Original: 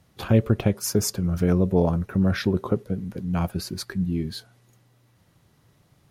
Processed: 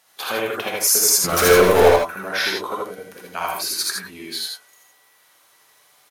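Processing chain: HPF 880 Hz 12 dB/oct; high shelf 7900 Hz +6 dB; 1.24–1.88 sample leveller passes 5; echo 81 ms -3 dB; non-linear reverb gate 0.1 s rising, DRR -1 dB; gain +6 dB

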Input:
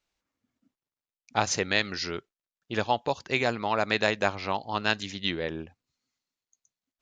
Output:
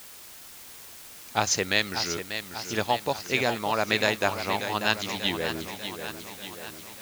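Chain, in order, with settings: high shelf 4900 Hz +7.5 dB; added noise white -46 dBFS; warbling echo 0.59 s, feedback 58%, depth 76 cents, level -9 dB

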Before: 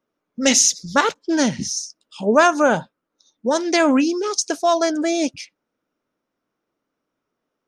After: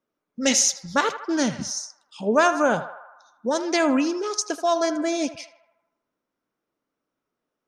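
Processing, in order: narrowing echo 79 ms, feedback 67%, band-pass 1100 Hz, level -11 dB; gain -4.5 dB

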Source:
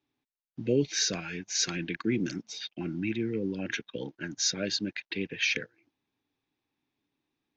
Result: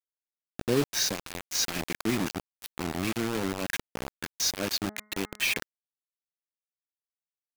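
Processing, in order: bit-crush 5-bit; 4.79–5.56 de-hum 211.5 Hz, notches 10

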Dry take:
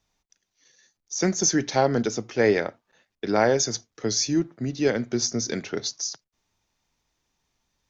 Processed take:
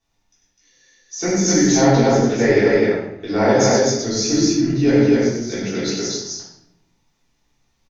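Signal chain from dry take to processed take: 5.04–5.49 compressor 2:1, threshold -42 dBFS, peak gain reduction 12 dB; loudspeakers at several distances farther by 33 m -5 dB, 87 m -1 dB; reverb RT60 0.80 s, pre-delay 3 ms, DRR -10 dB; gain -7 dB

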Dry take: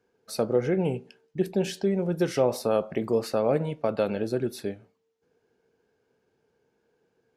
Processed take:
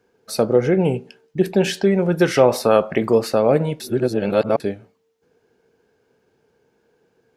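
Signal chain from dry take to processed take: 1.44–3.18 bell 1700 Hz +6.5 dB 1.8 oct; 3.8–4.6 reverse; gain +8 dB

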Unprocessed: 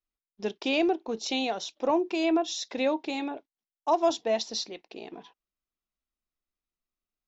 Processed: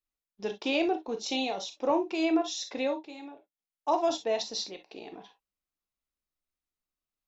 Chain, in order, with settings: 1.26–1.72 bell 1500 Hz -9.5 dB 0.24 oct; non-linear reverb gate 80 ms flat, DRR 5.5 dB; 2.61–3.92 dip -11.5 dB, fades 0.47 s equal-power; gain -2.5 dB

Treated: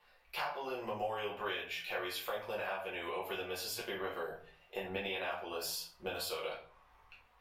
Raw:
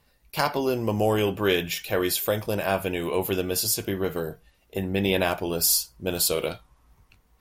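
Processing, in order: three-band isolator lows -21 dB, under 570 Hz, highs -16 dB, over 3500 Hz; compressor 5:1, threshold -42 dBFS, peak gain reduction 19.5 dB; shoebox room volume 34 m³, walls mixed, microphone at 0.96 m; gain -1 dB

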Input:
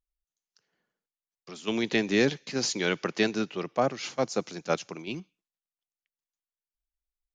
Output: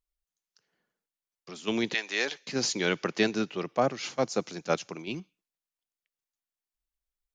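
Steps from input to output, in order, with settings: 1.93–2.45 HPF 1100 Hz -> 530 Hz 12 dB/oct

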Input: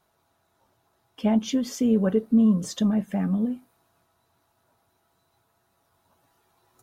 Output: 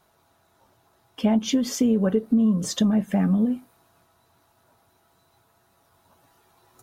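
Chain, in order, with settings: compressor 6:1, threshold -23 dBFS, peak gain reduction 8 dB; gain +6 dB

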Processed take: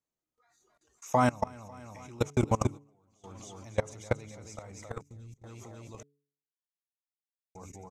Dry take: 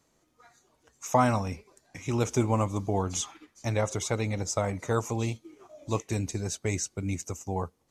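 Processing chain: feedback echo 0.273 s, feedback 51%, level -5 dB; spectral noise reduction 10 dB; 5.01–5.44 passive tone stack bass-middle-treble 10-0-1; level quantiser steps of 24 dB; 2.3–3.24 gate -37 dBFS, range -22 dB; 6.03–7.55 mute; de-hum 143.1 Hz, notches 3; gain +1.5 dB

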